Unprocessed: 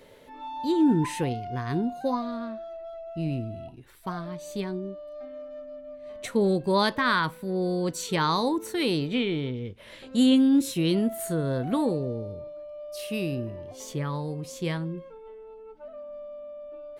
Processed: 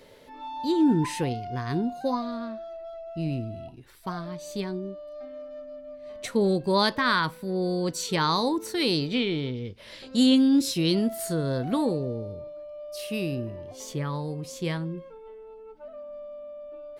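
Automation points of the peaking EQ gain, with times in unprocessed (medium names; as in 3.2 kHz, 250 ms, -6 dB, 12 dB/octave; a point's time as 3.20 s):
peaking EQ 4.9 kHz 0.57 oct
8.44 s +5.5 dB
8.97 s +12 dB
11.44 s +12 dB
12.06 s +2.5 dB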